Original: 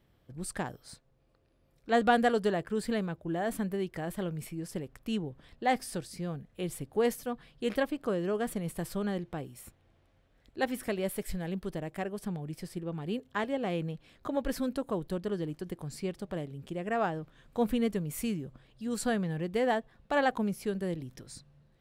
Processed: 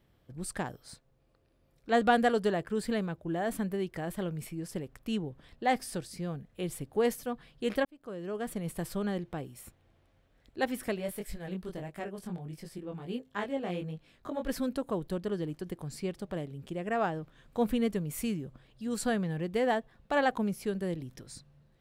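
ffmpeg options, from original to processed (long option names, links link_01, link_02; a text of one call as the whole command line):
ffmpeg -i in.wav -filter_complex "[0:a]asplit=3[link_01][link_02][link_03];[link_01]afade=type=out:start_time=10.96:duration=0.02[link_04];[link_02]flanger=delay=19:depth=3.7:speed=1.5,afade=type=in:start_time=10.96:duration=0.02,afade=type=out:start_time=14.47:duration=0.02[link_05];[link_03]afade=type=in:start_time=14.47:duration=0.02[link_06];[link_04][link_05][link_06]amix=inputs=3:normalize=0,asplit=2[link_07][link_08];[link_07]atrim=end=7.85,asetpts=PTS-STARTPTS,afade=type=out:start_time=7.846:duration=0.004:curve=hsin[link_09];[link_08]atrim=start=7.85,asetpts=PTS-STARTPTS,afade=type=in:duration=0.86[link_10];[link_09][link_10]concat=n=2:v=0:a=1" out.wav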